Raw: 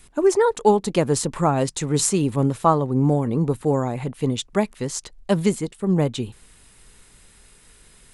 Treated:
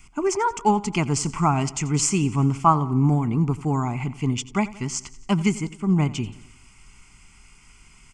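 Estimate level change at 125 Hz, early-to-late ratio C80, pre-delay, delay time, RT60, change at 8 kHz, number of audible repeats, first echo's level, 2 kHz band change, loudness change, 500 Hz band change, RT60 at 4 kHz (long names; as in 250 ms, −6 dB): +1.0 dB, no reverb audible, no reverb audible, 88 ms, no reverb audible, −0.5 dB, 4, −18.5 dB, +1.5 dB, −1.5 dB, −8.5 dB, no reverb audible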